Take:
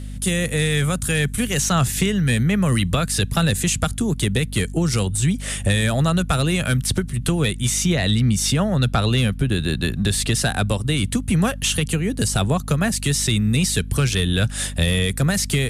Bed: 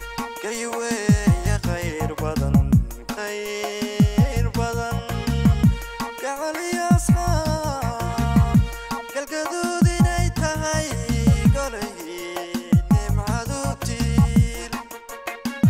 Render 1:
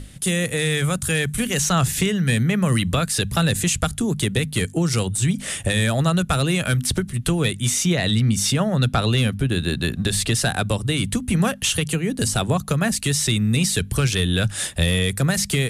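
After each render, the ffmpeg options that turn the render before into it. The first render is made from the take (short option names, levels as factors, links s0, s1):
-af "bandreject=f=50:t=h:w=6,bandreject=f=100:t=h:w=6,bandreject=f=150:t=h:w=6,bandreject=f=200:t=h:w=6,bandreject=f=250:t=h:w=6"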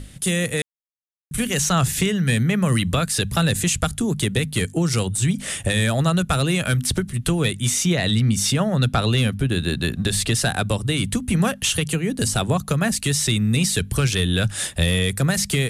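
-filter_complex "[0:a]asplit=3[s0][s1][s2];[s0]atrim=end=0.62,asetpts=PTS-STARTPTS,afade=t=out:st=0.616:d=0.004:c=hsin[s3];[s1]atrim=start=0.62:end=1.31,asetpts=PTS-STARTPTS,volume=0[s4];[s2]atrim=start=1.31,asetpts=PTS-STARTPTS,afade=t=in:d=0.004:c=hsin[s5];[s3][s4][s5]concat=n=3:v=0:a=1"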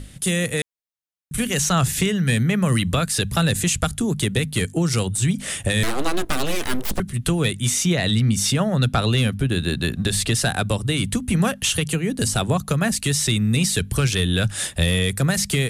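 -filter_complex "[0:a]asettb=1/sr,asplit=3[s0][s1][s2];[s0]atrim=end=5.834[s3];[s1]atrim=start=5.83:end=7,asetpts=PTS-STARTPTS,afade=t=in:d=0.004:c=qsin,afade=t=out:st=1.166:d=0.004:c=qsin,aeval=exprs='abs(val(0))':c=same[s4];[s2]atrim=start=6.996[s5];[s3][s4]acrossfade=d=0.004:c1=hsin:c2=qsin[s6];[s6][s5]acrossfade=d=0.004:c1=qsin:c2=hsin"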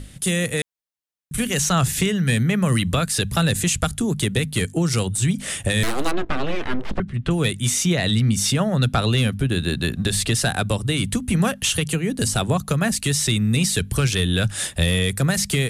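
-filter_complex "[0:a]asettb=1/sr,asplit=3[s0][s1][s2];[s0]atrim=end=6.114[s3];[s1]atrim=start=6.11:end=7.31,asetpts=PTS-STARTPTS,afade=t=in:d=0.004:c=qsin,afade=t=out:st=1.196:d=0.004:c=qsin,lowpass=2600[s4];[s2]atrim=start=7.306[s5];[s3][s4]acrossfade=d=0.004:c1=hsin:c2=qsin[s6];[s6][s5]acrossfade=d=0.004:c1=qsin:c2=hsin"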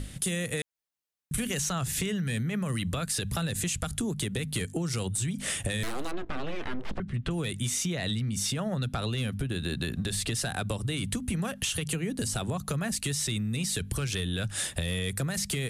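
-af "alimiter=limit=0.188:level=0:latency=1:release=70,acompressor=threshold=0.0398:ratio=6"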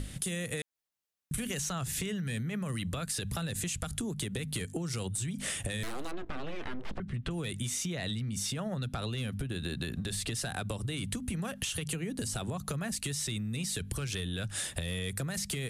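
-af "acompressor=threshold=0.0224:ratio=3"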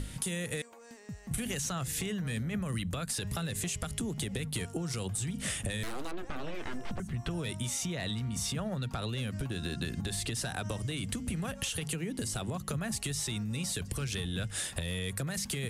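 -filter_complex "[1:a]volume=0.0422[s0];[0:a][s0]amix=inputs=2:normalize=0"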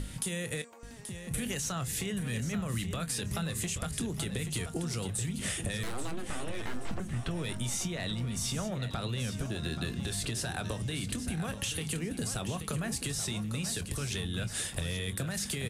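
-filter_complex "[0:a]asplit=2[s0][s1];[s1]adelay=25,volume=0.224[s2];[s0][s2]amix=inputs=2:normalize=0,asplit=2[s3][s4];[s4]aecho=0:1:831|1662|2493|3324:0.316|0.104|0.0344|0.0114[s5];[s3][s5]amix=inputs=2:normalize=0"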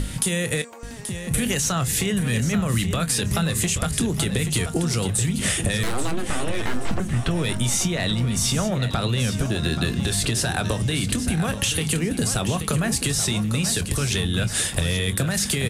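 -af "volume=3.76"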